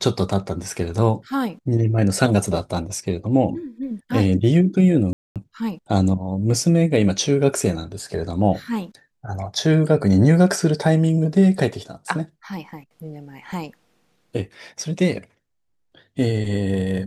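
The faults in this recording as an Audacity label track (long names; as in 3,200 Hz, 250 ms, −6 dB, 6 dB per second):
5.130000	5.360000	drop-out 227 ms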